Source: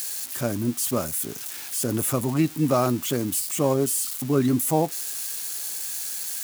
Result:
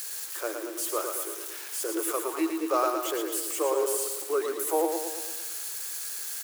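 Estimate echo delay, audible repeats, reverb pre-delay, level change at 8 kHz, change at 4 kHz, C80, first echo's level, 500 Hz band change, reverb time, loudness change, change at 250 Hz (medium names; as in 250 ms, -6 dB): 113 ms, 6, no reverb, -4.5 dB, -4.0 dB, no reverb, -5.5 dB, -2.0 dB, no reverb, -4.5 dB, -9.0 dB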